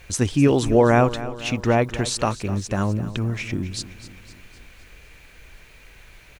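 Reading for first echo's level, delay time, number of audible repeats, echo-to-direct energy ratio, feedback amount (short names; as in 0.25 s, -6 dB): -15.0 dB, 0.255 s, 4, -13.5 dB, 54%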